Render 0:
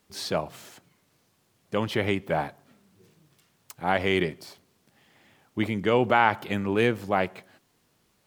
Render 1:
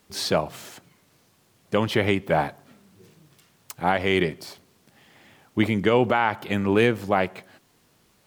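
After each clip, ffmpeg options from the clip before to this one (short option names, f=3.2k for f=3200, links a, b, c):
-af "alimiter=limit=-13.5dB:level=0:latency=1:release=496,volume=6dB"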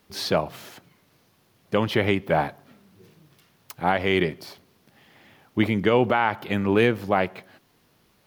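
-af "equalizer=f=7.8k:t=o:w=0.65:g=-8"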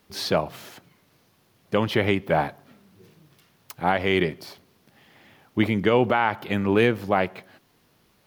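-af anull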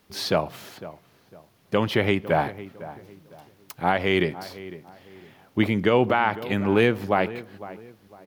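-filter_complex "[0:a]asplit=2[a][b];[b]adelay=504,lowpass=f=1.6k:p=1,volume=-15.5dB,asplit=2[c][d];[d]adelay=504,lowpass=f=1.6k:p=1,volume=0.33,asplit=2[e][f];[f]adelay=504,lowpass=f=1.6k:p=1,volume=0.33[g];[a][c][e][g]amix=inputs=4:normalize=0"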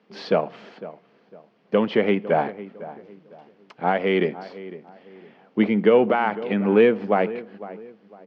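-af "aeval=exprs='if(lt(val(0),0),0.708*val(0),val(0))':c=same,highpass=f=170:w=0.5412,highpass=f=170:w=1.3066,equalizer=f=210:t=q:w=4:g=7,equalizer=f=460:t=q:w=4:g=8,equalizer=f=690:t=q:w=4:g=3,equalizer=f=3.8k:t=q:w=4:g=-7,lowpass=f=4.1k:w=0.5412,lowpass=f=4.1k:w=1.3066"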